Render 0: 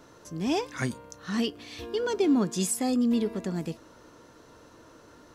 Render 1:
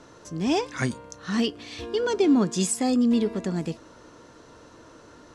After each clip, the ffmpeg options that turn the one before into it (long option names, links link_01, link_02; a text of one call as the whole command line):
ffmpeg -i in.wav -af "lowpass=frequency=9600:width=0.5412,lowpass=frequency=9600:width=1.3066,volume=3.5dB" out.wav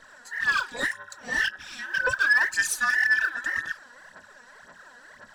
ffmpeg -i in.wav -af "afftfilt=real='real(if(between(b,1,1012),(2*floor((b-1)/92)+1)*92-b,b),0)':imag='imag(if(between(b,1,1012),(2*floor((b-1)/92)+1)*92-b,b),0)*if(between(b,1,1012),-1,1)':win_size=2048:overlap=0.75,aphaser=in_gain=1:out_gain=1:delay=4.2:decay=0.69:speed=1.9:type=sinusoidal,asoftclip=type=tanh:threshold=-10.5dB,volume=-3.5dB" out.wav